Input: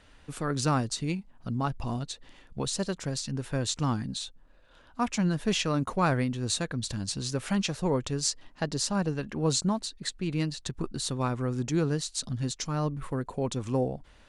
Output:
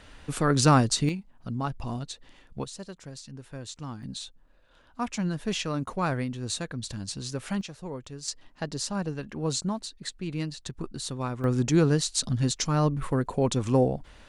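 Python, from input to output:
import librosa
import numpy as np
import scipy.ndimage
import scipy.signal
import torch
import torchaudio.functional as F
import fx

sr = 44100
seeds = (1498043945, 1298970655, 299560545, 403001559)

y = fx.gain(x, sr, db=fx.steps((0.0, 7.0), (1.09, -1.0), (2.64, -10.0), (4.03, -2.5), (7.61, -10.0), (8.28, -2.5), (11.44, 5.5)))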